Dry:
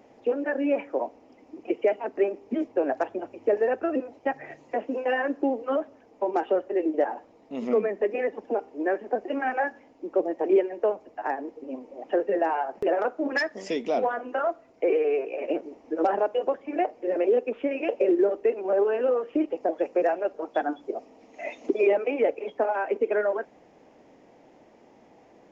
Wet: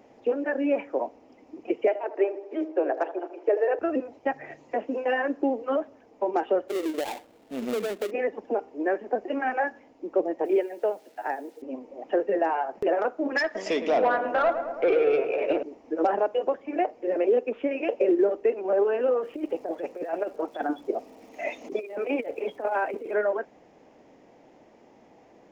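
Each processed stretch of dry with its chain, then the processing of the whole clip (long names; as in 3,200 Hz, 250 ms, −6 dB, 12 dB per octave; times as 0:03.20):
0:01.87–0:03.79: Butterworth high-pass 300 Hz 72 dB per octave + high-frequency loss of the air 69 metres + delay with a low-pass on its return 79 ms, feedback 55%, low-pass 1,200 Hz, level −11.5 dB
0:06.68–0:08.11: gap after every zero crossing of 0.23 ms + downward compressor 5 to 1, threshold −24 dBFS
0:10.45–0:11.62: bit-depth reduction 10 bits, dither none + high-pass filter 370 Hz 6 dB per octave + notch filter 1,100 Hz, Q 5.3
0:13.44–0:15.63: mid-hump overdrive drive 13 dB, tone 3,400 Hz, clips at −14 dBFS + feedback echo with a low-pass in the loop 109 ms, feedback 77%, low-pass 1,500 Hz, level −8.5 dB
0:19.22–0:23.13: compressor whose output falls as the input rises −27 dBFS, ratio −0.5 + surface crackle 420 per second −52 dBFS
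whole clip: no processing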